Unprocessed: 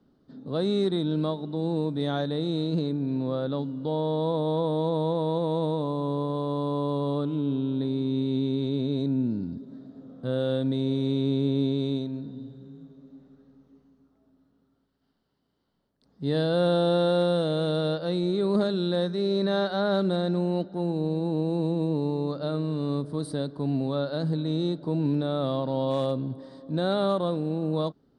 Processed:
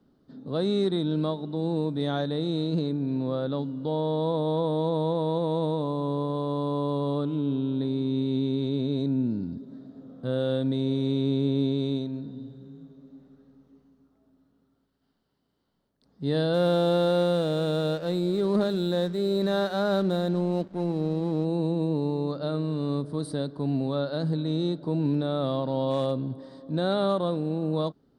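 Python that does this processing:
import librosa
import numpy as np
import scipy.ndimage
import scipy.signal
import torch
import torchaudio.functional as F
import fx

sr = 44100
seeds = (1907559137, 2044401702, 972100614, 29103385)

y = fx.backlash(x, sr, play_db=-40.0, at=(16.53, 21.44), fade=0.02)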